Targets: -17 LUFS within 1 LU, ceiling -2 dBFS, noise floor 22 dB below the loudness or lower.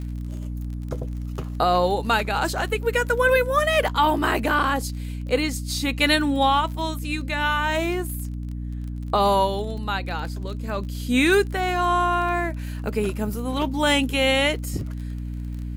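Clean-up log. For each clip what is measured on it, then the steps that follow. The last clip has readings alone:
tick rate 33 per s; hum 60 Hz; highest harmonic 300 Hz; hum level -28 dBFS; loudness -23.0 LUFS; peak level -6.5 dBFS; loudness target -17.0 LUFS
-> de-click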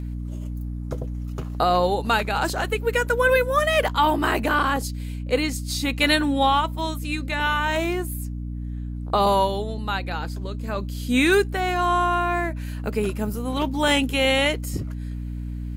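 tick rate 0.51 per s; hum 60 Hz; highest harmonic 300 Hz; hum level -28 dBFS
-> hum notches 60/120/180/240/300 Hz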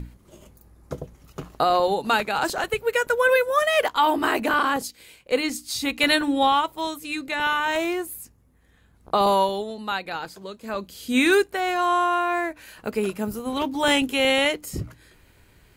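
hum not found; loudness -23.0 LUFS; peak level -6.5 dBFS; loudness target -17.0 LUFS
-> trim +6 dB; peak limiter -2 dBFS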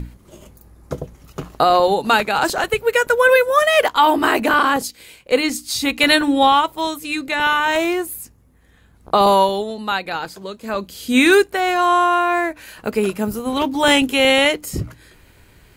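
loudness -17.0 LUFS; peak level -2.0 dBFS; noise floor -51 dBFS

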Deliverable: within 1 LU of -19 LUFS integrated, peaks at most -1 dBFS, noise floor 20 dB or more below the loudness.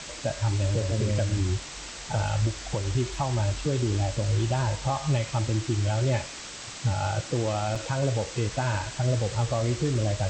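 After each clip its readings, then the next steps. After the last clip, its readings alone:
dropouts 1; longest dropout 4.9 ms; noise floor -40 dBFS; noise floor target -48 dBFS; loudness -28.0 LUFS; peak level -15.0 dBFS; loudness target -19.0 LUFS
-> interpolate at 7.75 s, 4.9 ms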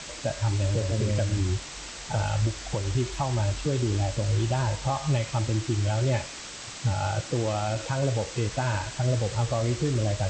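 dropouts 0; noise floor -40 dBFS; noise floor target -48 dBFS
-> noise reduction 8 dB, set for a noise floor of -40 dBFS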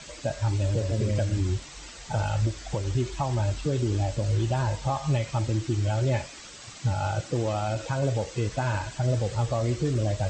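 noise floor -44 dBFS; noise floor target -48 dBFS
-> noise reduction 6 dB, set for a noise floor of -44 dBFS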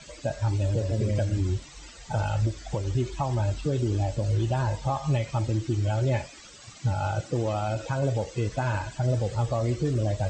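noise floor -48 dBFS; loudness -28.0 LUFS; peak level -16.0 dBFS; loudness target -19.0 LUFS
-> trim +9 dB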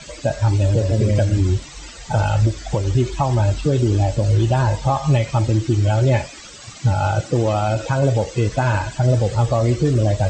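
loudness -19.0 LUFS; peak level -7.0 dBFS; noise floor -39 dBFS

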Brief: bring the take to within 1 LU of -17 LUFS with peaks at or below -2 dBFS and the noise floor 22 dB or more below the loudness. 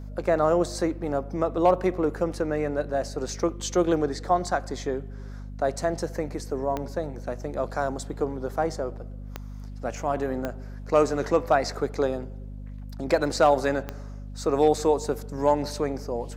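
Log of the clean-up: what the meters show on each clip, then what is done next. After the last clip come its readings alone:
clicks found 4; hum 50 Hz; highest harmonic 250 Hz; hum level -35 dBFS; loudness -26.5 LUFS; peak level -9.0 dBFS; loudness target -17.0 LUFS
-> de-click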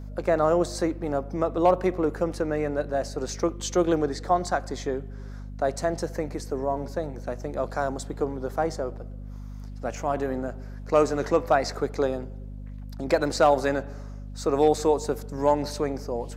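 clicks found 0; hum 50 Hz; highest harmonic 250 Hz; hum level -35 dBFS
-> hum notches 50/100/150/200/250 Hz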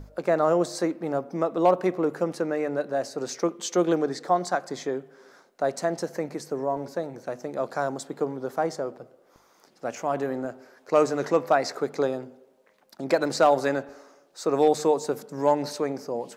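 hum not found; loudness -26.5 LUFS; peak level -9.0 dBFS; loudness target -17.0 LUFS
-> trim +9.5 dB; peak limiter -2 dBFS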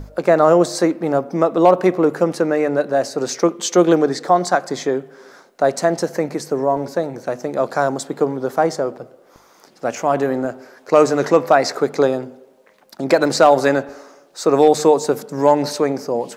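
loudness -17.5 LUFS; peak level -2.0 dBFS; noise floor -51 dBFS

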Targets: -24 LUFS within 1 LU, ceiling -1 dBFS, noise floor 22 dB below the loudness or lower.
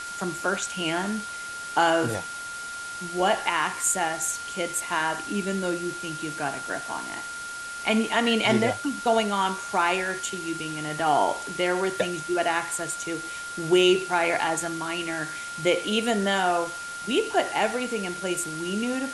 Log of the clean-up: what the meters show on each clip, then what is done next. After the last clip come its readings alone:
steady tone 1.4 kHz; tone level -34 dBFS; noise floor -36 dBFS; noise floor target -48 dBFS; loudness -26.0 LUFS; peak level -7.5 dBFS; loudness target -24.0 LUFS
-> band-stop 1.4 kHz, Q 30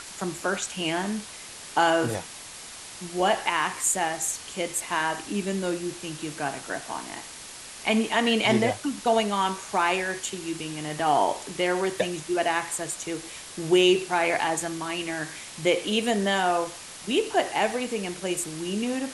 steady tone not found; noise floor -42 dBFS; noise floor target -49 dBFS
-> noise print and reduce 7 dB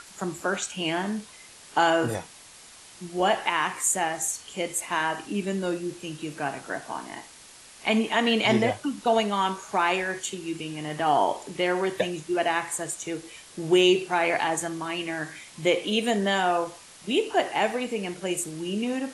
noise floor -49 dBFS; loudness -26.5 LUFS; peak level -8.0 dBFS; loudness target -24.0 LUFS
-> trim +2.5 dB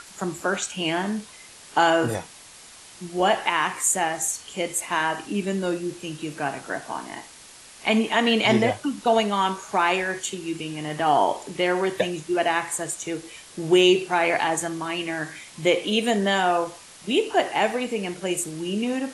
loudness -24.0 LUFS; peak level -5.5 dBFS; noise floor -46 dBFS

